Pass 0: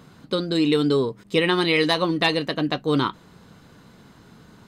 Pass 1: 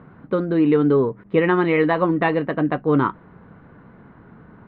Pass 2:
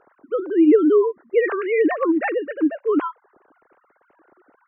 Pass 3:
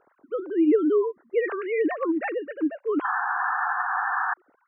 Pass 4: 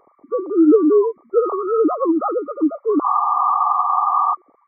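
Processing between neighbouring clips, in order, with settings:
low-pass filter 1,900 Hz 24 dB per octave; level +3.5 dB
three sine waves on the formant tracks
sound drawn into the spectrogram noise, 0:03.04–0:04.34, 710–1,800 Hz −20 dBFS; level −6 dB
hearing-aid frequency compression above 1,100 Hz 4 to 1; level +7.5 dB

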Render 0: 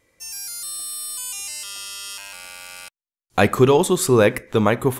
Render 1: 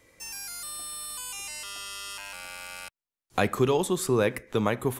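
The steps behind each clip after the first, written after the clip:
multiband upward and downward compressor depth 40%
level −8 dB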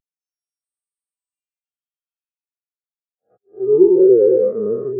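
every bin's largest magnitude spread in time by 480 ms
volume swells 435 ms
every bin expanded away from the loudest bin 4 to 1
level +1 dB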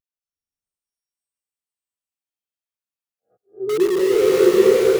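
in parallel at −9.5 dB: wrap-around overflow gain 11.5 dB
on the sum: slow-attack reverb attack 670 ms, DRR −4 dB
level −7.5 dB

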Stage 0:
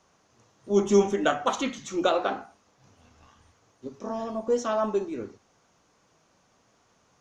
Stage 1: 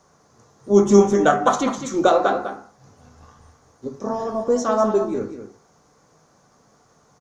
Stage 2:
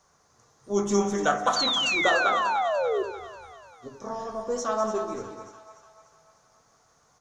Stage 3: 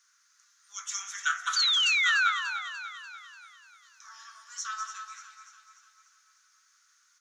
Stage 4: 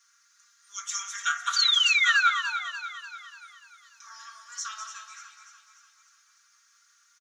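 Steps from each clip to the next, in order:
parametric band 2,800 Hz −11.5 dB 0.86 octaves; single-tap delay 202 ms −9.5 dB; on a send at −8 dB: convolution reverb RT60 0.45 s, pre-delay 3 ms; on the sum: level +7.5 dB
parametric band 250 Hz −10 dB 2.9 octaves; sound drawn into the spectrogram fall, 0:01.56–0:03.03, 370–4,700 Hz −23 dBFS; echo with a time of its own for lows and highs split 690 Hz, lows 83 ms, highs 294 ms, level −10 dB; level −3 dB
elliptic high-pass filter 1,400 Hz, stop band 60 dB; level +1.5 dB
comb filter 4.3 ms, depth 91%

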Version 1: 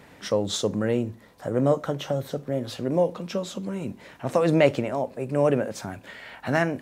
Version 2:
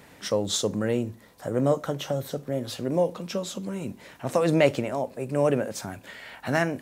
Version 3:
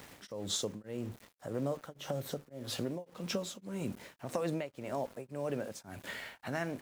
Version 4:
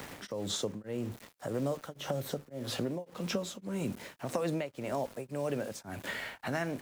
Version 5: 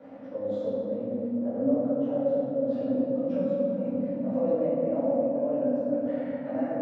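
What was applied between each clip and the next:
high-shelf EQ 5,400 Hz +8 dB; level −1.5 dB
downward compressor 5 to 1, threshold −33 dBFS, peak gain reduction 16.5 dB; centre clipping without the shift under −49.5 dBFS; tremolo along a rectified sine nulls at 1.8 Hz; level +1 dB
multiband upward and downward compressor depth 40%; level +2.5 dB
pair of resonant band-passes 380 Hz, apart 1 octave; high-frequency loss of the air 76 metres; convolution reverb RT60 2.9 s, pre-delay 3 ms, DRR −16 dB; level −1.5 dB

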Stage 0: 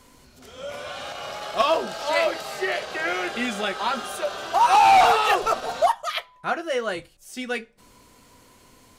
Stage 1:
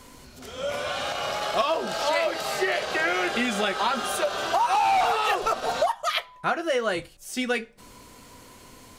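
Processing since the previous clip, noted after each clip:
downward compressor 6 to 1, threshold −26 dBFS, peak gain reduction 12 dB
level +5 dB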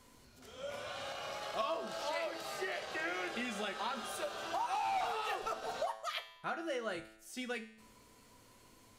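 tuned comb filter 110 Hz, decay 0.8 s, harmonics all, mix 70%
level −5 dB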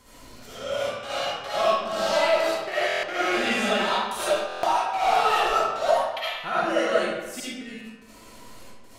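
gate pattern "xxxx.x.x.xxx.x." 73 BPM −60 dB
comb and all-pass reverb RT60 1.1 s, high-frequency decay 0.75×, pre-delay 30 ms, DRR −10 dB
buffer that repeats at 0:02.87/0:04.47, samples 1,024, times 6
level +5.5 dB

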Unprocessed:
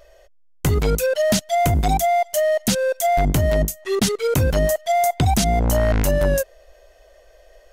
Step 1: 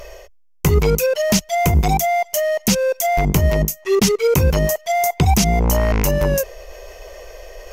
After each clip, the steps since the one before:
EQ curve with evenly spaced ripples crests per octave 0.79, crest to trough 7 dB
reversed playback
upward compression, threshold −26 dBFS
reversed playback
level +2.5 dB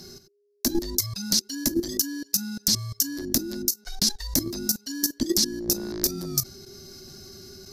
frequency shifter −410 Hz
high shelf with overshoot 3,300 Hz +9.5 dB, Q 3
output level in coarse steps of 12 dB
level −8.5 dB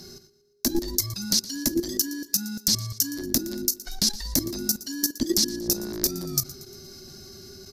repeating echo 117 ms, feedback 52%, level −18 dB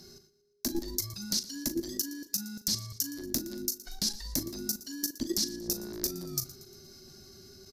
double-tracking delay 39 ms −12 dB
level −8 dB

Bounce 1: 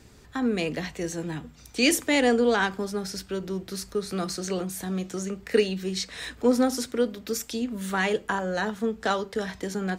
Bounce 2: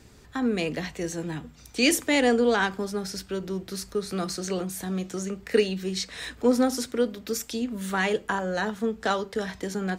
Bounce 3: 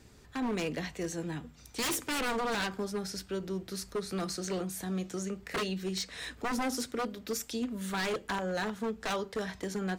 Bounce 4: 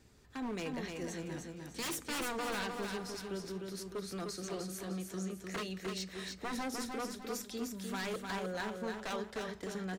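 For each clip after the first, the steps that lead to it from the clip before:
no processing that can be heard
wave folding −22 dBFS; level −4.5 dB
repeating echo 303 ms, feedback 38%, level −4.5 dB; level −6.5 dB

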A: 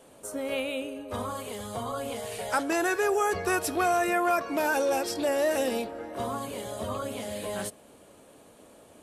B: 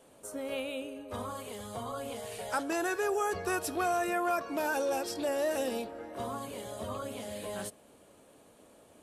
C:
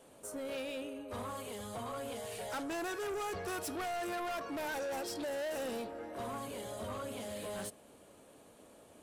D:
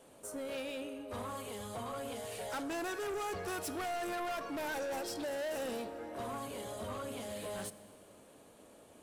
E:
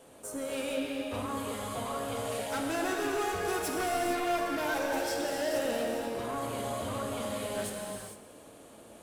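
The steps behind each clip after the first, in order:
dynamic equaliser 2,100 Hz, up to −4 dB, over −48 dBFS, Q 4.1; level −5 dB
soft clipping −35.5 dBFS, distortion −8 dB
four-comb reverb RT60 2.1 s, combs from 29 ms, DRR 15.5 dB
reverb whose tail is shaped and stops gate 480 ms flat, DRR −0.5 dB; level +3.5 dB

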